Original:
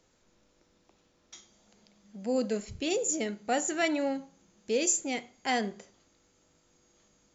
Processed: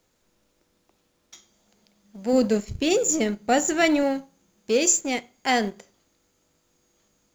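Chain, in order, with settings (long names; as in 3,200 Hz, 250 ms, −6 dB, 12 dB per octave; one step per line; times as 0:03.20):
mu-law and A-law mismatch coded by A
0:02.33–0:04.03: low-shelf EQ 220 Hz +7.5 dB
level +8 dB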